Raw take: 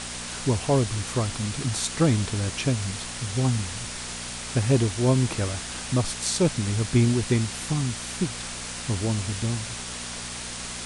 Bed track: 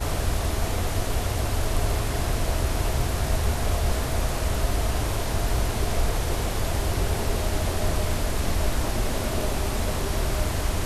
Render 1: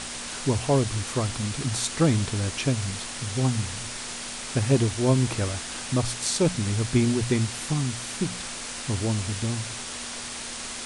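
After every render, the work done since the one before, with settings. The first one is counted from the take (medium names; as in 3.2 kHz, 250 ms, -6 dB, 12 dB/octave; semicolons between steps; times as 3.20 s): de-hum 60 Hz, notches 3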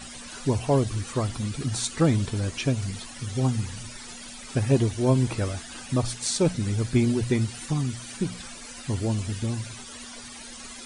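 noise reduction 15 dB, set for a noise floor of -36 dBFS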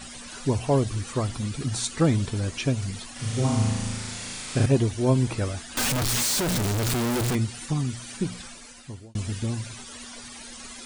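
3.12–4.66 s: flutter echo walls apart 6.3 m, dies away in 1.4 s; 5.77–7.35 s: one-bit comparator; 8.36–9.15 s: fade out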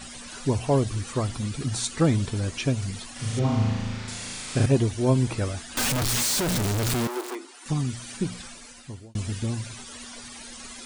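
3.39–4.08 s: low-pass 3.8 kHz; 7.07–7.66 s: rippled Chebyshev high-pass 260 Hz, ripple 9 dB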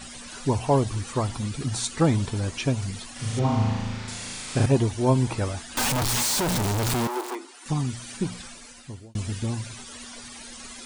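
dynamic bell 890 Hz, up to +7 dB, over -48 dBFS, Q 2.6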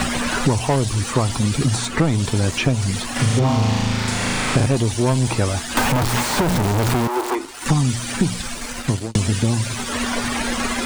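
waveshaping leveller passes 2; three bands compressed up and down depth 100%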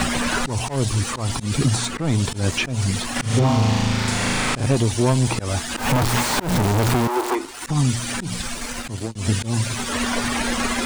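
slow attack 135 ms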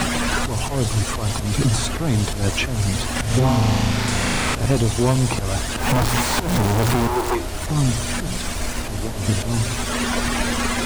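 add bed track -3.5 dB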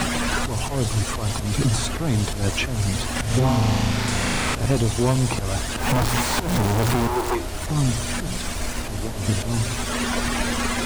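trim -2 dB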